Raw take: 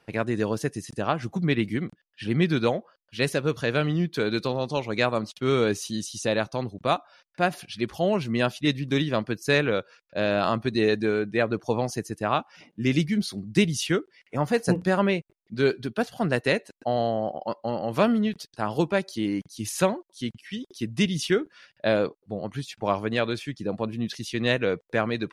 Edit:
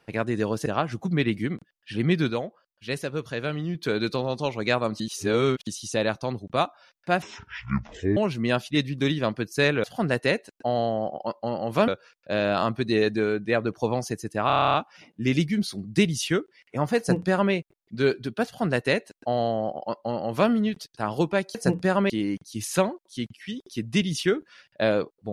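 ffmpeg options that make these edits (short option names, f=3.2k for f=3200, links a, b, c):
-filter_complex "[0:a]asplit=21[a][b][c][d][e][f][g][h][i][j][k][l][m][n][o][p][q][r][s][t][u];[a]atrim=end=0.662[v];[b]atrim=start=0.968:end=2.612[w];[c]atrim=start=2.608:end=4.062,asetpts=PTS-STARTPTS,volume=-5dB[x];[d]atrim=start=4.058:end=5.312[y];[e]atrim=start=5.308:end=5.982,asetpts=PTS-STARTPTS,areverse[z];[f]atrim=start=5.978:end=7.534[aa];[g]atrim=start=7.53:end=8.07,asetpts=PTS-STARTPTS,asetrate=25137,aresample=44100[ab];[h]atrim=start=8.066:end=9.742[ac];[i]atrim=start=16.048:end=18.092[ad];[j]atrim=start=9.738:end=12.362[ae];[k]atrim=start=12.328:end=12.362[af];[l]atrim=start=12.328:end=12.362[ag];[m]atrim=start=12.328:end=12.362[ah];[n]atrim=start=12.328:end=12.362[ai];[o]atrim=start=12.328:end=12.362[aj];[p]atrim=start=12.328:end=12.362[ak];[q]atrim=start=12.328:end=12.362[al];[r]atrim=start=12.328:end=12.362[am];[s]atrim=start=12.328:end=19.142[an];[t]atrim=start=14.568:end=15.122[ao];[u]atrim=start=19.138[ap];[v][w]acrossfade=d=0.004:c1=hsin:c2=hsin[aq];[aq][x]acrossfade=d=0.004:c1=hsin:c2=hsin[ar];[ar][y]acrossfade=d=0.004:c1=hsin:c2=hsin[as];[as][z]acrossfade=d=0.004:c1=hsin:c2=hsin[at];[at][aa]acrossfade=d=0.004:c1=hsin:c2=hsin[au];[au][ab]acrossfade=d=0.004:c1=hsin:c2=hsin[av];[av][ac]acrossfade=d=0.004:c1=hsin:c2=hsin[aw];[aw][ad]acrossfade=d=0.004:c1=hsin:c2=hsin[ax];[ax][ae]acrossfade=d=0.004:c1=hsin:c2=hsin[ay];[ay][af]acrossfade=d=0.004:c1=hsin:c2=hsin[az];[az][ag]acrossfade=d=0.004:c1=hsin:c2=hsin[ba];[ba][ah]acrossfade=d=0.004:c1=hsin:c2=hsin[bb];[bb][ai]acrossfade=d=0.004:c1=hsin:c2=hsin[bc];[bc][aj]acrossfade=d=0.004:c1=hsin:c2=hsin[bd];[bd][ak]acrossfade=d=0.004:c1=hsin:c2=hsin[be];[be][al]acrossfade=d=0.004:c1=hsin:c2=hsin[bf];[bf][am]acrossfade=d=0.004:c1=hsin:c2=hsin[bg];[bg][an]acrossfade=d=0.004:c1=hsin:c2=hsin[bh];[bh][ao]acrossfade=d=0.004:c1=hsin:c2=hsin[bi];[bi][ap]acrossfade=d=0.004:c1=hsin:c2=hsin"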